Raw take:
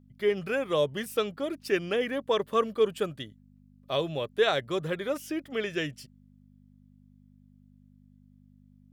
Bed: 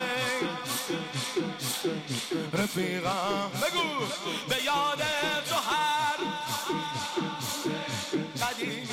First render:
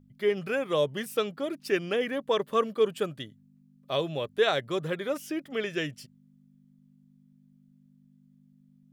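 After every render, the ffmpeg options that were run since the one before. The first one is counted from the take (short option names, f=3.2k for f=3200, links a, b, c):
-af "bandreject=f=50:t=h:w=4,bandreject=f=100:t=h:w=4"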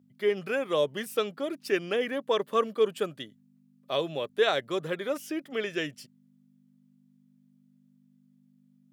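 -af "highpass=190"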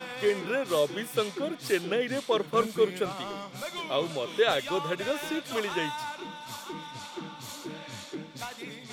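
-filter_complex "[1:a]volume=-8.5dB[a];[0:a][a]amix=inputs=2:normalize=0"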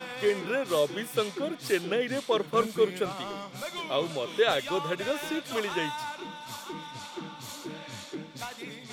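-af anull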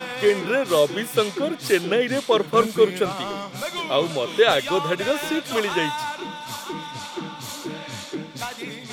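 -af "volume=7.5dB"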